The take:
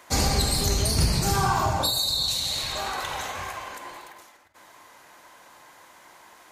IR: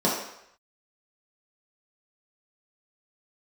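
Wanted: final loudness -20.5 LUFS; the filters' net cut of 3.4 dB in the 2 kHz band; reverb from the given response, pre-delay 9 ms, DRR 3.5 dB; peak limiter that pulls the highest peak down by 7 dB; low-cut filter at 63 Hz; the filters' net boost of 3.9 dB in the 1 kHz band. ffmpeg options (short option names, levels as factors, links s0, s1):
-filter_complex "[0:a]highpass=63,equalizer=f=1000:t=o:g=6.5,equalizer=f=2000:t=o:g=-7.5,alimiter=limit=0.158:level=0:latency=1,asplit=2[s0][s1];[1:a]atrim=start_sample=2205,adelay=9[s2];[s1][s2]afir=irnorm=-1:irlink=0,volume=0.119[s3];[s0][s3]amix=inputs=2:normalize=0,volume=1.58"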